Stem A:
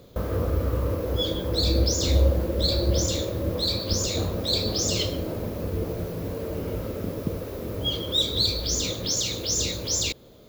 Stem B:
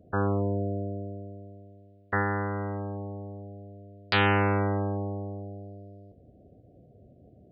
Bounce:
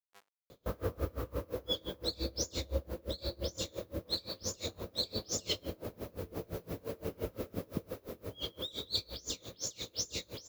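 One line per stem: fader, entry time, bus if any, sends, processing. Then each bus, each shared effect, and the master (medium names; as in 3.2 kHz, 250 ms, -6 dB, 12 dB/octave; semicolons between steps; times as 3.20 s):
-5.5 dB, 0.50 s, no send, bass shelf 250 Hz -6.5 dB
-17.0 dB, 0.00 s, no send, hum 50 Hz, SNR 21 dB; Schmitt trigger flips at -21 dBFS; high-pass 790 Hz 12 dB/octave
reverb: none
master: gain riding within 4 dB 2 s; logarithmic tremolo 5.8 Hz, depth 27 dB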